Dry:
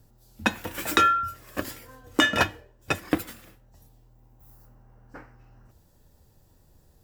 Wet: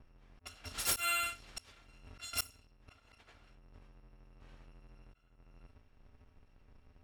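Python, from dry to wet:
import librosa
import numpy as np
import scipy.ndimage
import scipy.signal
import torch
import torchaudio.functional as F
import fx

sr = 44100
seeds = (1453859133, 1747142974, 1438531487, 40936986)

y = fx.bit_reversed(x, sr, seeds[0], block=256)
y = fx.auto_swell(y, sr, attack_ms=510.0)
y = fx.env_lowpass(y, sr, base_hz=1700.0, full_db=-31.0)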